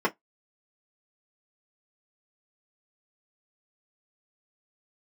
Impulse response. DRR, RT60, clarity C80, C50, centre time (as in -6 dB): -3.0 dB, 0.15 s, 41.5 dB, 27.5 dB, 8 ms